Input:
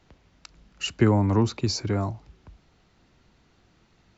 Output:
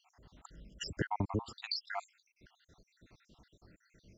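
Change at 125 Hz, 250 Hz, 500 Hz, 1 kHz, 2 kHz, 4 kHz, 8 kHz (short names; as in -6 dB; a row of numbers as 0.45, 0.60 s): -17.5 dB, -17.5 dB, -16.5 dB, -8.0 dB, -7.0 dB, -8.5 dB, n/a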